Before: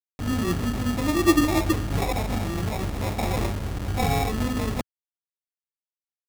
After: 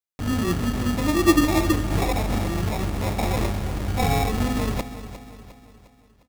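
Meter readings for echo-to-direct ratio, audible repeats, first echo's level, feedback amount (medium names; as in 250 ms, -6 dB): -12.0 dB, 4, -13.0 dB, 47%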